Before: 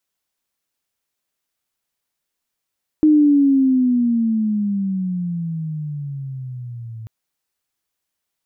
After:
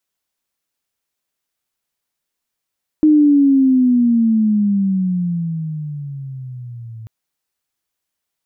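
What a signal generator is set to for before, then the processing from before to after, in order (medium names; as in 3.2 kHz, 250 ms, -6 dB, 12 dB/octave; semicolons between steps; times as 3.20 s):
sweep logarithmic 310 Hz -> 110 Hz -8.5 dBFS -> -30 dBFS 4.04 s
dynamic bell 200 Hz, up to +5 dB, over -29 dBFS, Q 1.6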